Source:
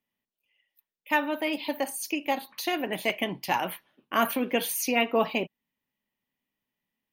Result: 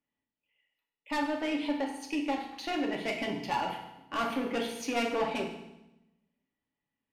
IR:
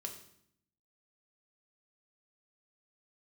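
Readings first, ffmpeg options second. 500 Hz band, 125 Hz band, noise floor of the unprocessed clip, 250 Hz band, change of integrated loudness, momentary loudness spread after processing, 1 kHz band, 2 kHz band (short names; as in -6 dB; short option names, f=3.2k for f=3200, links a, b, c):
-4.5 dB, -3.0 dB, under -85 dBFS, -1.5 dB, -4.5 dB, 6 LU, -4.0 dB, -6.5 dB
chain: -filter_complex "[0:a]asoftclip=type=tanh:threshold=-24dB,adynamicsmooth=sensitivity=4:basefreq=3.3k[a];[1:a]atrim=start_sample=2205,asetrate=31752,aresample=44100[b];[a][b]afir=irnorm=-1:irlink=0"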